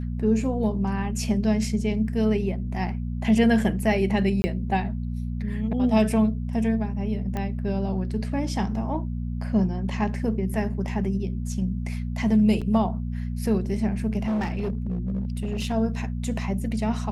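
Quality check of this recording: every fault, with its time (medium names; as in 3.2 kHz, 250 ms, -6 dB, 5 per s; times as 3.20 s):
hum 60 Hz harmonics 4 -29 dBFS
4.42–4.44 s: dropout 20 ms
7.37 s: pop -17 dBFS
12.61–12.62 s: dropout 6.1 ms
14.26–15.74 s: clipped -22.5 dBFS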